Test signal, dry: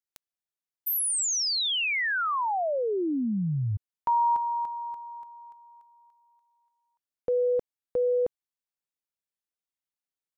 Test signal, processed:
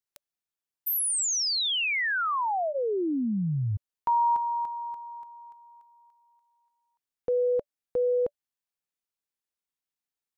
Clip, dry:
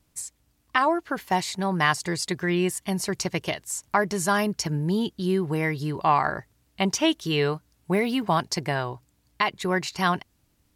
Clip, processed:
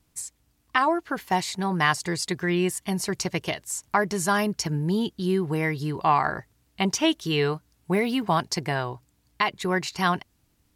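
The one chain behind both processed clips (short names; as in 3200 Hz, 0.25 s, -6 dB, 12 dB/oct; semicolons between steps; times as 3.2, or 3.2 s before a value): notch 580 Hz, Q 15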